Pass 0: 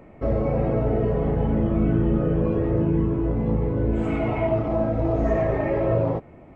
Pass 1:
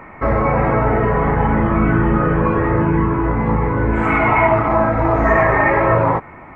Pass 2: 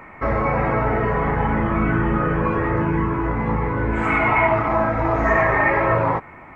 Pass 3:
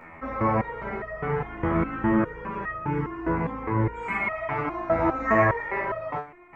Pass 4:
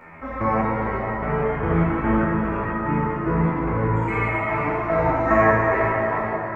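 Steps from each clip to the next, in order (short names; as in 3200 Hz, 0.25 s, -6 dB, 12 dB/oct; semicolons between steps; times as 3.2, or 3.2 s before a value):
band shelf 1400 Hz +15.5 dB; gain +5 dB
high shelf 2100 Hz +7.5 dB; gain -5 dB
stepped resonator 4.9 Hz 82–630 Hz; gain +5 dB
plate-style reverb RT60 4.4 s, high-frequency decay 0.55×, DRR -3.5 dB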